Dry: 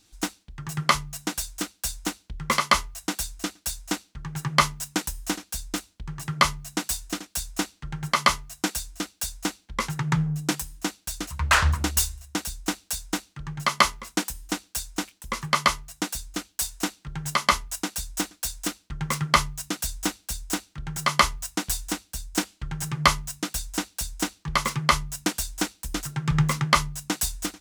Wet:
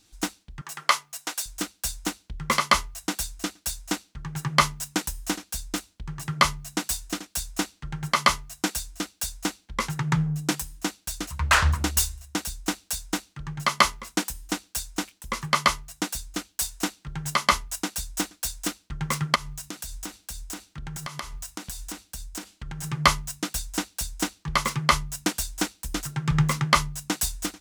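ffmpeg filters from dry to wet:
-filter_complex "[0:a]asettb=1/sr,asplit=3[a][b][c];[a]atrim=end=0.614[d];[b]atrim=start=0.61:end=1.46,asetpts=PTS-STARTPTS,afade=t=in:d=0.004:c=qsin,afade=t=out:st=0.846:d=0.004:c=qsin,highpass=590[e];[c]atrim=start=1.456[f];[d][e]acrossfade=d=0.004:c1=hsin:c2=qsin[g];[g][f]acrossfade=d=0.004:c1=qsin:c2=hsin,asplit=3[h][i][j];[h]afade=t=out:st=19.34:d=0.02[k];[i]acompressor=threshold=-31dB:ratio=8:attack=3.2:release=140:knee=1:detection=peak,afade=t=in:st=19.34:d=0.02,afade=t=out:st=22.83:d=0.02[l];[j]afade=t=in:st=22.83:d=0.02[m];[k][l][m]amix=inputs=3:normalize=0"

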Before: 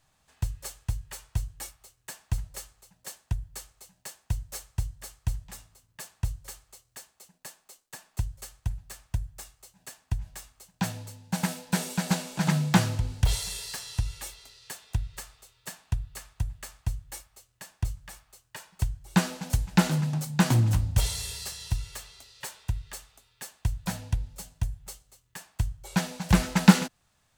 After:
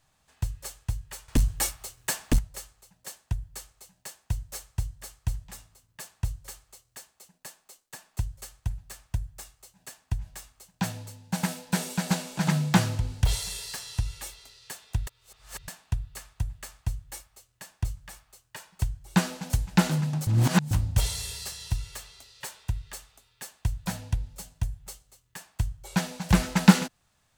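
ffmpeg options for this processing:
-filter_complex "[0:a]asettb=1/sr,asplit=3[a][b][c];[a]atrim=end=1.284[d];[b]atrim=start=1.28:end=2.39,asetpts=PTS-STARTPTS,afade=t=in:d=0.004:c=qsin,afade=t=out:st=1.106:d=0.004:c=qsin,aeval=exprs='0.178*sin(PI/2*2.82*val(0)/0.178)':c=same[e];[c]atrim=start=2.386[f];[d][e]acrossfade=d=0.004:c1=hsin:c2=qsin[g];[g][f]acrossfade=d=0.004:c1=qsin:c2=hsin,asplit=5[h][i][j][k][l];[h]atrim=end=15.072[m];[i]atrim=start=15.068:end=15.682,asetpts=PTS-STARTPTS,areverse[n];[j]atrim=start=15.678:end=20.272[o];[k]atrim=start=20.268:end=20.712,asetpts=PTS-STARTPTS,areverse[p];[l]atrim=start=20.708[q];[m][n]acrossfade=d=0.004:c1=hsin:c2=hsin[r];[r][o]acrossfade=d=0.004:c1=hsin:c2=hsin[s];[s][p]acrossfade=d=0.004:c1=hsin:c2=hsin[t];[t][q]acrossfade=d=0.004:c1=hsin:c2=hsin"

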